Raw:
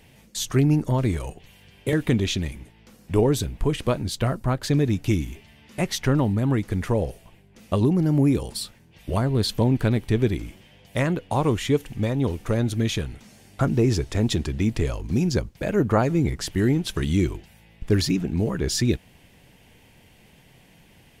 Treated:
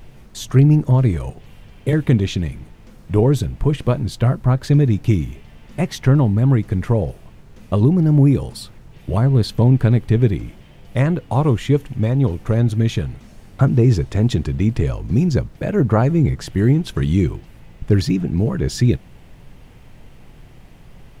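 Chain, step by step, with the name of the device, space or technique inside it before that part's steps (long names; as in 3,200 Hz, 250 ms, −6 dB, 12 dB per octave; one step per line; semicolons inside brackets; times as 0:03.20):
car interior (parametric band 130 Hz +7 dB 0.73 octaves; high-shelf EQ 2,700 Hz −7.5 dB; brown noise bed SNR 24 dB)
level +3 dB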